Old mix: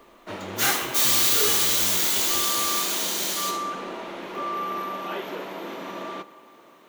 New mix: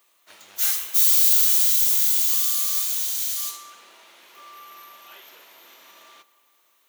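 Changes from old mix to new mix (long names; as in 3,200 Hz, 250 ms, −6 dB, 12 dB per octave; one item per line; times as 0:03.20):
speech +6.5 dB
master: add first difference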